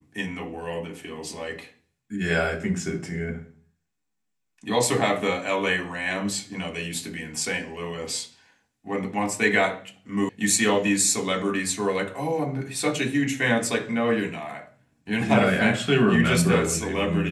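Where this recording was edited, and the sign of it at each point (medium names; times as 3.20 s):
10.29 s: sound stops dead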